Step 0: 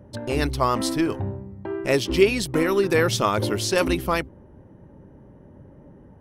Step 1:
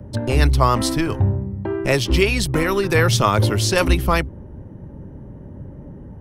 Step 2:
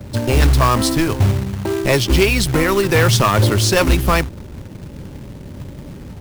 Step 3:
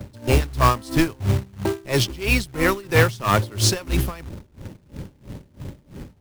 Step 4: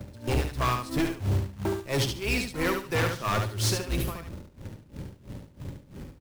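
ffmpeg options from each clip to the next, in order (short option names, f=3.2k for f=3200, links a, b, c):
-filter_complex "[0:a]lowshelf=f=230:g=10,acrossover=split=130|590|1800[a][b][c][d];[b]acompressor=threshold=-27dB:ratio=6[e];[a][e][c][d]amix=inputs=4:normalize=0,volume=4.5dB"
-af "asoftclip=type=hard:threshold=-9.5dB,acrusher=bits=3:mode=log:mix=0:aa=0.000001,volume=3.5dB"
-af "aeval=exprs='val(0)*pow(10,-24*(0.5-0.5*cos(2*PI*3*n/s))/20)':c=same"
-af "volume=17.5dB,asoftclip=hard,volume=-17.5dB,aecho=1:1:72|144|216:0.531|0.117|0.0257,volume=-5dB"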